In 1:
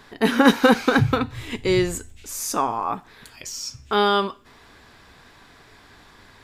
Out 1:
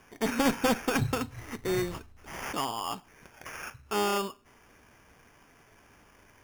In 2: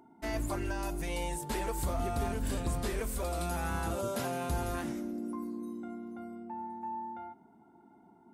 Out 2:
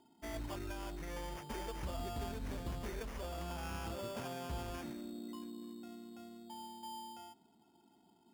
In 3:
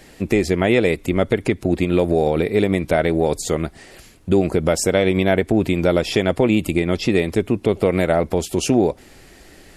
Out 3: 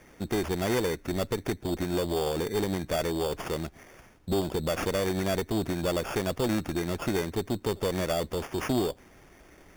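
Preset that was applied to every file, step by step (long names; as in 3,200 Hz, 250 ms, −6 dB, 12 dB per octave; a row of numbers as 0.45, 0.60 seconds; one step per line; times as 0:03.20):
decimation without filtering 11×
asymmetric clip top −17.5 dBFS
level −8.5 dB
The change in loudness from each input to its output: −10.0, −8.5, −11.0 LU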